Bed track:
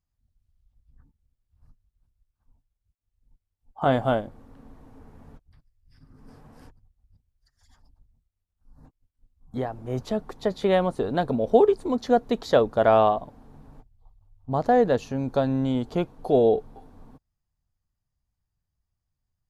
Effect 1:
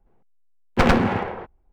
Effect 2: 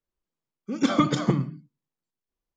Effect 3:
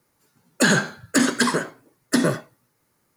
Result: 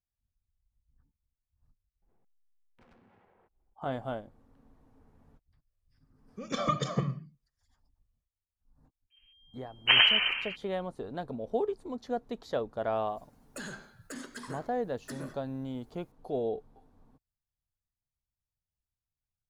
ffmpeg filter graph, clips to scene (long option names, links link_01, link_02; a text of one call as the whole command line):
ffmpeg -i bed.wav -i cue0.wav -i cue1.wav -i cue2.wav -filter_complex "[1:a]asplit=2[link_01][link_02];[0:a]volume=-13dB[link_03];[link_01]acompressor=threshold=-56dB:ratio=6:attack=3.2:release=140:knee=1:detection=peak[link_04];[2:a]aecho=1:1:1.7:0.74[link_05];[link_02]lowpass=frequency=2700:width_type=q:width=0.5098,lowpass=frequency=2700:width_type=q:width=0.6013,lowpass=frequency=2700:width_type=q:width=0.9,lowpass=frequency=2700:width_type=q:width=2.563,afreqshift=-3200[link_06];[3:a]acompressor=threshold=-26dB:ratio=20:attack=0.11:release=324:knee=6:detection=rms[link_07];[link_03]asplit=2[link_08][link_09];[link_08]atrim=end=2.024[link_10];[link_04]atrim=end=1.72,asetpts=PTS-STARTPTS,volume=-9.5dB[link_11];[link_09]atrim=start=3.736[link_12];[link_05]atrim=end=2.56,asetpts=PTS-STARTPTS,volume=-8dB,afade=type=in:duration=0.004:curve=hsin,afade=type=out:start_time=2.556:duration=0.004:curve=hsin,adelay=250929S[link_13];[link_06]atrim=end=1.72,asetpts=PTS-STARTPTS,volume=-5dB,afade=type=in:duration=0.004:curve=hsin,afade=type=out:start_time=1.716:duration=0.004:curve=hsin,adelay=9100[link_14];[link_07]atrim=end=3.16,asetpts=PTS-STARTPTS,volume=-7.5dB,afade=type=in:duration=0.004:curve=hsin,afade=type=out:start_time=3.156:duration=0.004:curve=hsin,adelay=12960[link_15];[link_10][link_11]acrossfade=duration=0.004:curve1=hsin:curve2=hsin[link_16];[link_16][link_12]acrossfade=duration=0.004:curve1=hsin:curve2=hsin[link_17];[link_17][link_13][link_14][link_15]amix=inputs=4:normalize=0" out.wav